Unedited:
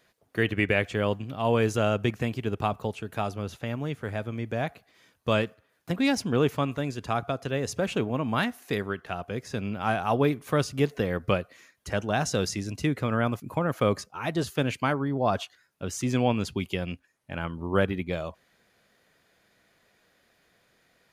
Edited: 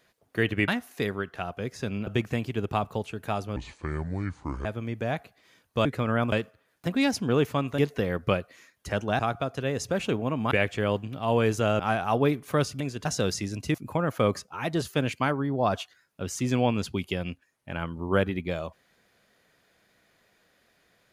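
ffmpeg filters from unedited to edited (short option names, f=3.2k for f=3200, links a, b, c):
-filter_complex "[0:a]asplit=14[a][b][c][d][e][f][g][h][i][j][k][l][m][n];[a]atrim=end=0.682[o];[b]atrim=start=8.388:end=9.782[p];[c]atrim=start=1.958:end=3.454[q];[d]atrim=start=3.45:end=4.16,asetpts=PTS-STARTPTS,asetrate=28665,aresample=44100[r];[e]atrim=start=4.156:end=5.362[s];[f]atrim=start=12.888:end=13.362[t];[g]atrim=start=5.358:end=6.822[u];[h]atrim=start=10.788:end=12.202[v];[i]atrim=start=7.068:end=8.392[w];[j]atrim=start=0.678:end=1.962[x];[k]atrim=start=9.778:end=10.792[y];[l]atrim=start=6.818:end=7.072[z];[m]atrim=start=12.198:end=12.892[aa];[n]atrim=start=13.358[ab];[o][p]acrossfade=d=0.004:c1=hsin:c2=hsin[ac];[ac][q]acrossfade=d=0.004:c1=hsin:c2=hsin[ad];[ad][r]acrossfade=d=0.004:c1=hsin:c2=hsin[ae];[ae][s]acrossfade=d=0.004:c1=hsin:c2=hsin[af];[af][t]acrossfade=d=0.004:c1=hsin:c2=hsin[ag];[ag][u]acrossfade=d=0.004:c1=hsin:c2=hsin[ah];[ah][v]acrossfade=d=0.004:c1=hsin:c2=hsin[ai];[ai][w]acrossfade=d=0.004:c1=hsin:c2=hsin[aj];[aj][x]acrossfade=d=0.004:c1=hsin:c2=hsin[ak];[ak][y]acrossfade=d=0.004:c1=hsin:c2=hsin[al];[al][z]acrossfade=d=0.004:c1=hsin:c2=hsin[am];[am][aa]acrossfade=d=0.004:c1=hsin:c2=hsin[an];[an][ab]acrossfade=d=0.004:c1=hsin:c2=hsin"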